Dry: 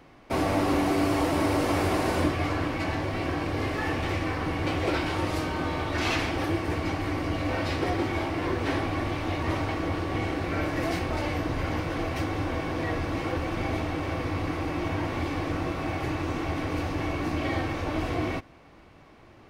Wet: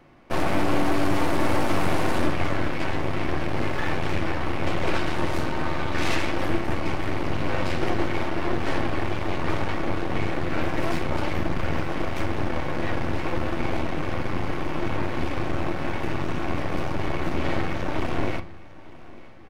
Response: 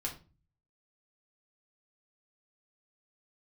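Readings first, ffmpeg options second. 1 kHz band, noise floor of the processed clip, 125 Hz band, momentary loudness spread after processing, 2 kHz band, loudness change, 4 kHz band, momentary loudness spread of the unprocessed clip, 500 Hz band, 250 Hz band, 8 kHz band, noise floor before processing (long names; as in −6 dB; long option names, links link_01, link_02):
+1.5 dB, −39 dBFS, +0.5 dB, 5 LU, +2.0 dB, +1.0 dB, +1.0 dB, 5 LU, +1.5 dB, +0.5 dB, 0.0 dB, −53 dBFS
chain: -filter_complex "[0:a]aeval=exprs='0.282*(cos(1*acos(clip(val(0)/0.282,-1,1)))-cos(1*PI/2))+0.0562*(cos(8*acos(clip(val(0)/0.282,-1,1)))-cos(8*PI/2))':channel_layout=same,aecho=1:1:902|1804|2706|3608:0.0891|0.0455|0.0232|0.0118,asplit=2[link_01][link_02];[1:a]atrim=start_sample=2205,asetrate=48510,aresample=44100,lowpass=3500[link_03];[link_02][link_03]afir=irnorm=-1:irlink=0,volume=-4.5dB[link_04];[link_01][link_04]amix=inputs=2:normalize=0,volume=-4dB"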